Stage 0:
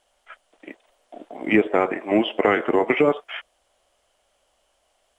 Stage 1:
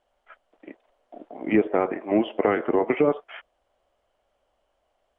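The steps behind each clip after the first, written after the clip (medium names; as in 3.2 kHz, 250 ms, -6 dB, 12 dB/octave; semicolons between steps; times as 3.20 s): low-pass 1.1 kHz 6 dB/octave; trim -1.5 dB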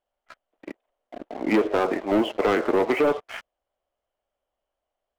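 waveshaping leveller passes 3; trim -6 dB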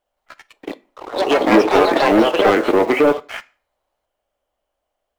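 block-companded coder 7-bit; on a send at -14 dB: reverberation RT60 0.40 s, pre-delay 3 ms; on the sum: ever faster or slower copies 168 ms, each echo +5 st, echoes 2; trim +6.5 dB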